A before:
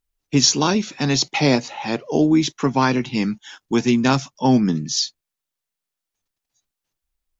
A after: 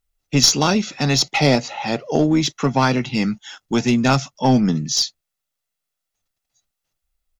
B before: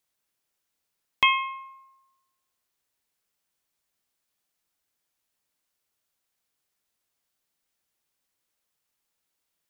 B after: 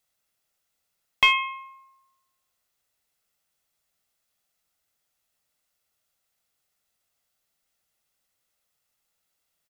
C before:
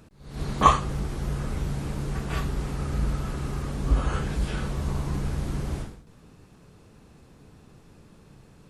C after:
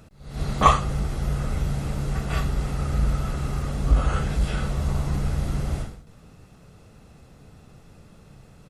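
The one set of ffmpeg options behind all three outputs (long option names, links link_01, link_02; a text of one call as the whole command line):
ffmpeg -i in.wav -filter_complex "[0:a]aecho=1:1:1.5:0.33,asplit=2[link_01][link_02];[link_02]aeval=exprs='clip(val(0),-1,0.133)':channel_layout=same,volume=-3dB[link_03];[link_01][link_03]amix=inputs=2:normalize=0,volume=-2.5dB" out.wav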